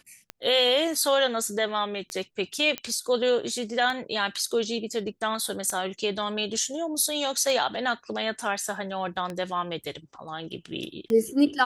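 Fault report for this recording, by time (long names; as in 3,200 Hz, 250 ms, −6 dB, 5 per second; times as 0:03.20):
scratch tick 33 1/3 rpm −18 dBFS
0:02.78: click −13 dBFS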